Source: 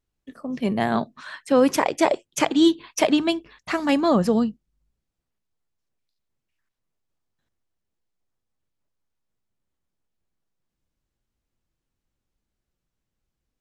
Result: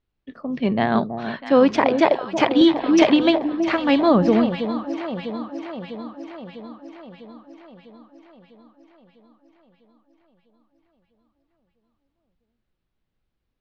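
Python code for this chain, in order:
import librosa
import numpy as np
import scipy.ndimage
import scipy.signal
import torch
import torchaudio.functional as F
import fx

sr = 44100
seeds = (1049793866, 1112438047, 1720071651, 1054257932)

y = scipy.signal.sosfilt(scipy.signal.butter(4, 4300.0, 'lowpass', fs=sr, output='sos'), x)
y = fx.echo_alternate(y, sr, ms=325, hz=840.0, feedback_pct=78, wet_db=-8)
y = fx.band_squash(y, sr, depth_pct=100, at=(2.61, 3.36))
y = y * librosa.db_to_amplitude(2.5)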